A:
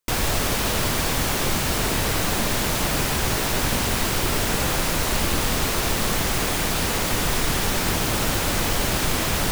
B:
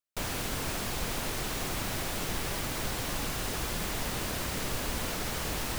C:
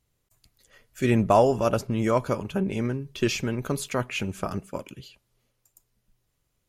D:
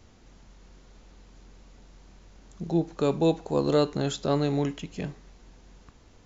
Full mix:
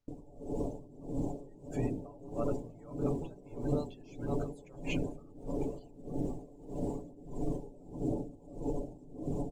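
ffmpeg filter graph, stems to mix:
-filter_complex "[0:a]firequalizer=gain_entry='entry(100,0);entry(280,11);entry(1600,-22);entry(2600,-14);entry(4400,-12);entry(7600,-2);entry(12000,-15)':delay=0.05:min_phase=1,volume=0.266[s0];[1:a]adelay=1800,volume=0.133[s1];[2:a]acompressor=threshold=0.0316:ratio=3,adelay=750,volume=1[s2];[3:a]volume=0.316[s3];[s0][s1]amix=inputs=2:normalize=0,aphaser=in_gain=1:out_gain=1:delay=2.4:decay=0.23:speed=0.98:type=triangular,alimiter=level_in=1.12:limit=0.0631:level=0:latency=1:release=74,volume=0.891,volume=1[s4];[s2][s3]amix=inputs=2:normalize=0,alimiter=level_in=1.58:limit=0.0631:level=0:latency=1:release=482,volume=0.631,volume=1[s5];[s4][s5]amix=inputs=2:normalize=0,afftdn=nr=19:nf=-42,aecho=1:1:7:0.62,aeval=exprs='val(0)*pow(10,-22*(0.5-0.5*cos(2*PI*1.6*n/s))/20)':c=same"

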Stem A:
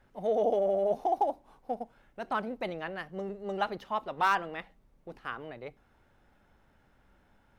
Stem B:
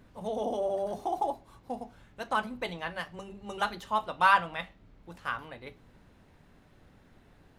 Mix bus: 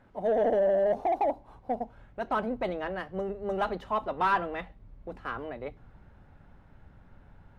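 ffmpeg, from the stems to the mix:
-filter_complex "[0:a]lowshelf=f=300:g=6,asplit=2[s0][s1];[s1]highpass=f=720:p=1,volume=5.62,asoftclip=type=tanh:threshold=0.168[s2];[s0][s2]amix=inputs=2:normalize=0,lowpass=f=1100:p=1,volume=0.501,volume=0.891[s3];[1:a]asubboost=boost=6.5:cutoff=180,volume=-1,volume=0.398[s4];[s3][s4]amix=inputs=2:normalize=0,highshelf=f=5500:g=-8.5"

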